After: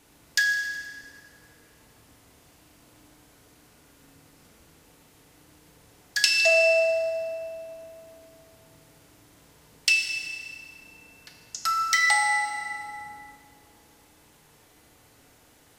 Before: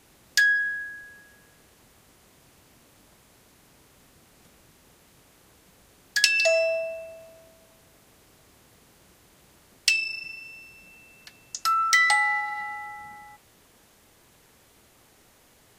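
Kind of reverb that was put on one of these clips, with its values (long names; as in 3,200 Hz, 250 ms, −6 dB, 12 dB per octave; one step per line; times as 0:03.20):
feedback delay network reverb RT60 2.7 s, high-frequency decay 0.65×, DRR 1 dB
level −2 dB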